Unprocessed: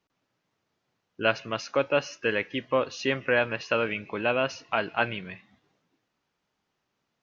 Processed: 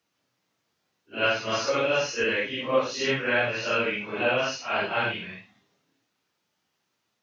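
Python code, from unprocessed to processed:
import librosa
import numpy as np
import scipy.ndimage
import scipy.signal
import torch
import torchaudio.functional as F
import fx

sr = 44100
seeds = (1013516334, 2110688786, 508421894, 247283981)

y = fx.phase_scramble(x, sr, seeds[0], window_ms=200)
y = scipy.signal.sosfilt(scipy.signal.butter(2, 89.0, 'highpass', fs=sr, output='sos'), y)
y = fx.high_shelf(y, sr, hz=3000.0, db=8.0)
y = fx.band_squash(y, sr, depth_pct=100, at=(1.25, 2.24))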